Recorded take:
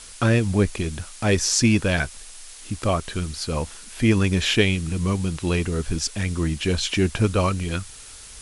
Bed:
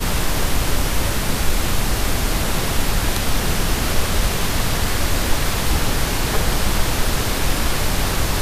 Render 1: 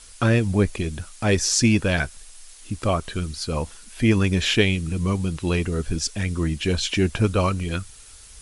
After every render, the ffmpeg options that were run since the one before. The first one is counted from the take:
-af "afftdn=nr=6:nf=-42"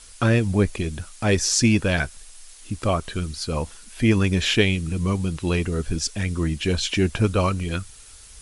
-af anull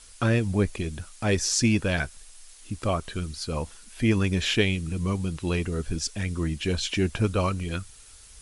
-af "volume=-4dB"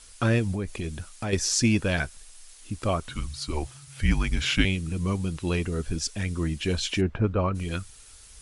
-filter_complex "[0:a]asettb=1/sr,asplit=3[a][b][c];[a]atrim=end=0.534[d];[b]atrim=start=0.53:end=1.33,asetpts=PTS-STARTPTS,afade=t=in:d=0.004:c=qsin,afade=t=out:st=0.796:d=0.004:c=qsin,acompressor=threshold=-26dB:ratio=4:attack=3.2:release=140:knee=1:detection=peak[e];[c]atrim=start=1.326[f];[d][e]acrossfade=d=0.004:c1=hsin:c2=qsin[g];[g][f]acrossfade=d=0.004:c1=qsin:c2=hsin,asettb=1/sr,asplit=3[h][i][j];[h]atrim=end=3.084[k];[i]atrim=start=3.08:end=4.65,asetpts=PTS-STARTPTS,afade=t=in:d=0.004:c=qsin,afade=t=out:st=1.566:d=0.004:c=qsin,afreqshift=-150[l];[j]atrim=start=4.646[m];[k][l]acrossfade=d=0.004:c1=hsin:c2=qsin[n];[n][m]acrossfade=d=0.004:c1=qsin:c2=hsin,asplit=3[o][p][q];[o]afade=t=out:st=7:d=0.02[r];[p]lowpass=1.6k,afade=t=in:st=7:d=0.02,afade=t=out:st=7.54:d=0.02[s];[q]afade=t=in:st=7.54:d=0.02[t];[r][s][t]amix=inputs=3:normalize=0"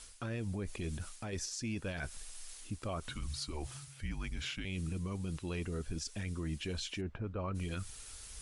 -af "areverse,acompressor=threshold=-32dB:ratio=16,areverse,alimiter=level_in=6dB:limit=-24dB:level=0:latency=1:release=102,volume=-6dB"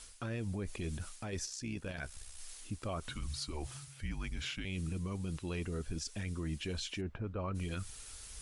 -filter_complex "[0:a]asplit=3[a][b][c];[a]afade=t=out:st=1.45:d=0.02[d];[b]tremolo=f=65:d=0.571,afade=t=in:st=1.45:d=0.02,afade=t=out:st=2.38:d=0.02[e];[c]afade=t=in:st=2.38:d=0.02[f];[d][e][f]amix=inputs=3:normalize=0"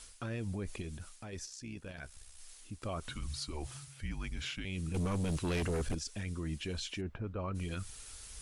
-filter_complex "[0:a]asettb=1/sr,asplit=3[a][b][c];[a]atrim=end=4.944[d];[b]atrim=start=4.94:end=5.95,asetpts=PTS-STARTPTS,afade=t=in:d=0.004:c=qsin,afade=t=out:st=1.006:d=0.004:c=qsin,aeval=exprs='0.0335*sin(PI/2*2*val(0)/0.0335)':c=same[e];[c]atrim=start=5.946[f];[d][e]acrossfade=d=0.004:c1=hsin:c2=qsin[g];[g][f]acrossfade=d=0.004:c1=qsin:c2=hsin,asplit=3[h][i][j];[h]atrim=end=0.822[k];[i]atrim=start=0.818:end=2.822,asetpts=PTS-STARTPTS,volume=-4.5dB[l];[j]atrim=start=2.818[m];[k][l]acrossfade=d=0.004:c1=hsin:c2=hsin[n];[n][m]acrossfade=d=0.004:c1=hsin:c2=hsin"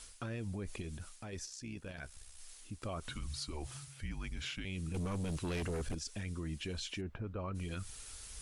-af "acompressor=threshold=-38dB:ratio=2"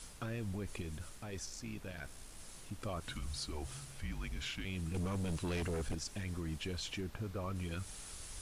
-filter_complex "[1:a]volume=-36.5dB[a];[0:a][a]amix=inputs=2:normalize=0"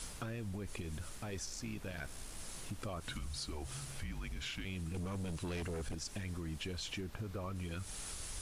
-filter_complex "[0:a]asplit=2[a][b];[b]alimiter=level_in=16dB:limit=-24dB:level=0:latency=1:release=437,volume=-16dB,volume=-0.5dB[c];[a][c]amix=inputs=2:normalize=0,acompressor=threshold=-38dB:ratio=6"

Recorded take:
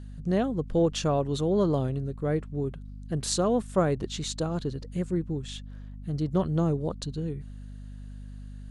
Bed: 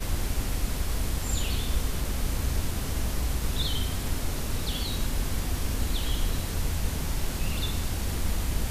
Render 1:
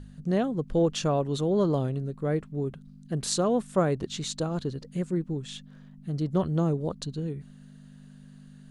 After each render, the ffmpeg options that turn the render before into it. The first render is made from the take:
-af "bandreject=f=50:t=h:w=4,bandreject=f=100:t=h:w=4"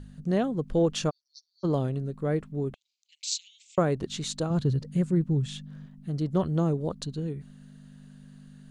-filter_complex "[0:a]asplit=3[a][b][c];[a]afade=t=out:st=1.09:d=0.02[d];[b]asuperpass=centerf=5100:order=8:qfactor=3.5,afade=t=in:st=1.09:d=0.02,afade=t=out:st=1.63:d=0.02[e];[c]afade=t=in:st=1.63:d=0.02[f];[d][e][f]amix=inputs=3:normalize=0,asettb=1/sr,asplit=3[g][h][i];[g]atrim=end=2.744[j];[h]atrim=start=2.74:end=3.78,asetpts=PTS-STARTPTS,afade=t=in:d=0.004:c=qsin,afade=t=out:st=1.036:d=0.004:c=qsin,asuperpass=centerf=4200:order=20:qfactor=0.76[k];[i]atrim=start=3.776[l];[j][k]acrossfade=d=0.004:c1=hsin:c2=qsin[m];[m][l]acrossfade=d=0.004:c1=qsin:c2=hsin,asettb=1/sr,asplit=3[n][o][p];[n]atrim=end=4.504[q];[o]atrim=start=4.5:end=5.86,asetpts=PTS-STARTPTS,afade=t=in:d=0.004:c=qsin,afade=t=out:st=1.356:d=0.004:c=qsin,equalizer=f=120:w=1.5:g=12.5[r];[p]atrim=start=5.856[s];[q][r]acrossfade=d=0.004:c1=hsin:c2=qsin[t];[t][s]acrossfade=d=0.004:c1=qsin:c2=hsin"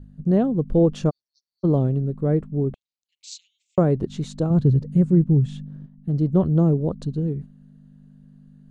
-af "agate=range=-8dB:threshold=-42dB:ratio=16:detection=peak,tiltshelf=f=970:g=9"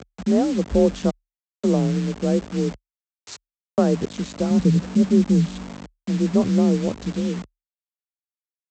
-af "aresample=16000,acrusher=bits=5:mix=0:aa=0.000001,aresample=44100,afreqshift=36"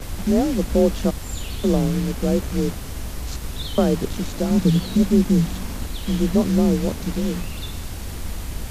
-filter_complex "[1:a]volume=-1.5dB[a];[0:a][a]amix=inputs=2:normalize=0"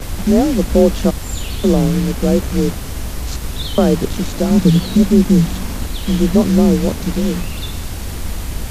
-af "volume=6dB,alimiter=limit=-1dB:level=0:latency=1"

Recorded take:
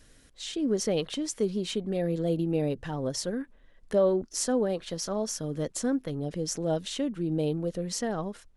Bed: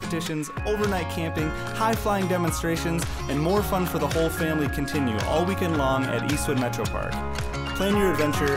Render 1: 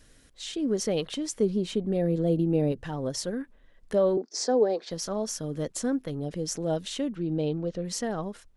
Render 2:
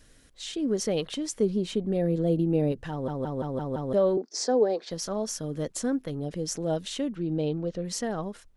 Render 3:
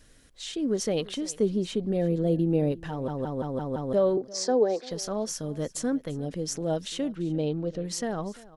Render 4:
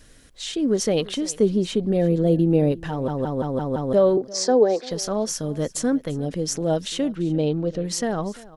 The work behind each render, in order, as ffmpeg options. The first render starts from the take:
-filter_complex "[0:a]asettb=1/sr,asplit=3[a][b][c];[a]atrim=end=1.354[d];[b]atrim=start=1.35:end=2.72,asetpts=PTS-STARTPTS,afade=t=in:d=0.004:c=qsin,afade=t=out:st=1.366:d=0.004:c=qsin,tiltshelf=f=920:g=4[e];[c]atrim=start=2.716[f];[d][e]acrossfade=d=0.004:c1=hsin:c2=qsin[g];[g][f]acrossfade=d=0.004:c1=qsin:c2=hsin,asettb=1/sr,asplit=3[h][i][j];[h]atrim=end=4.174[k];[i]atrim=start=4.17:end=4.91,asetpts=PTS-STARTPTS,afade=t=in:d=0.004:c=qsin,afade=t=out:st=0.736:d=0.004:c=qsin,highpass=f=240:w=0.5412,highpass=f=240:w=1.3066,equalizer=f=440:t=q:w=4:g=8,equalizer=f=770:t=q:w=4:g=6,equalizer=f=1.3k:t=q:w=4:g=-4,equalizer=f=2.9k:t=q:w=4:g=-10,equalizer=f=4.8k:t=q:w=4:g=7,lowpass=f=6.6k:w=0.5412,lowpass=f=6.6k:w=1.3066[l];[j]atrim=start=4.906[m];[k][l]acrossfade=d=0.004:c1=hsin:c2=qsin[n];[n][m]acrossfade=d=0.004:c1=qsin:c2=hsin,asettb=1/sr,asplit=3[o][p][q];[o]atrim=end=7.154[r];[p]atrim=start=7.15:end=7.85,asetpts=PTS-STARTPTS,afade=t=in:d=0.004:c=qsin,afade=t=out:st=0.696:d=0.004:c=qsin,lowpass=f=6.1k:w=0.5412,lowpass=f=6.1k:w=1.3066[s];[q]atrim=start=7.846[t];[r][s]acrossfade=d=0.004:c1=hsin:c2=qsin[u];[u][t]acrossfade=d=0.004:c1=qsin:c2=hsin"
-filter_complex "[0:a]asplit=7[a][b][c][d][e][f][g];[a]atrim=end=3.082[h];[b]atrim=start=2.908:end=3.082[i];[c]atrim=start=2.908:end=3.082[j];[d]atrim=start=2.908:end=3.082[k];[e]atrim=start=2.908:end=3.082[l];[f]atrim=start=2.908:end=3.082[m];[g]atrim=start=3.928[n];[h][i]acrossfade=d=0.004:c1=hsin:c2=hsin[o];[o][j]acrossfade=d=0.004:c1=hsin:c2=hsin[p];[p][k]acrossfade=d=0.004:c1=hsin:c2=hsin[q];[q][l]acrossfade=d=0.004:c1=hsin:c2=hsin[r];[r][m]acrossfade=d=0.004:c1=hsin:c2=hsin[s];[s][n]acrossfade=d=0.004:c1=hsin:c2=hsin"
-af "aecho=1:1:344:0.0944"
-af "volume=6dB"

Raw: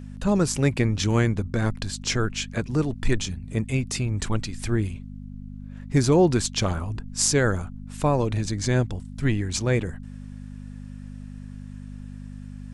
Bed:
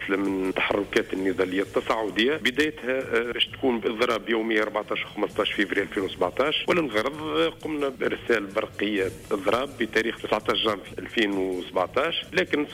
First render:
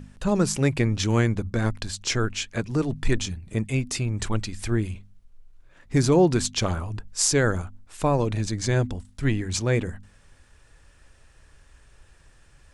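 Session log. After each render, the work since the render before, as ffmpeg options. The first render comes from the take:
-af "bandreject=f=50:t=h:w=4,bandreject=f=100:t=h:w=4,bandreject=f=150:t=h:w=4,bandreject=f=200:t=h:w=4,bandreject=f=250:t=h:w=4"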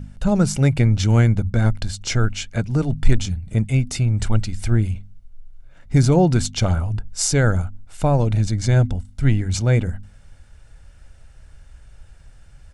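-af "lowshelf=f=320:g=7.5,aecho=1:1:1.4:0.4"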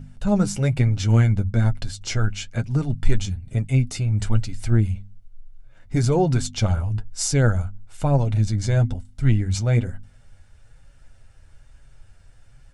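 -af "flanger=delay=7.2:depth=3:regen=30:speed=1.1:shape=sinusoidal"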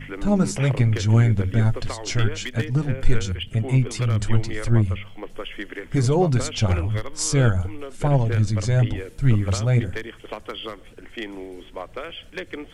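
-filter_complex "[1:a]volume=-9.5dB[a];[0:a][a]amix=inputs=2:normalize=0"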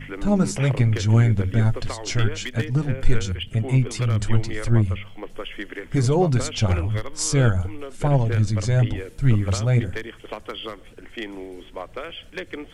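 -af anull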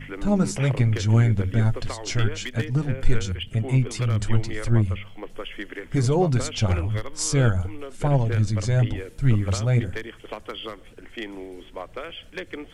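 -af "volume=-1.5dB"

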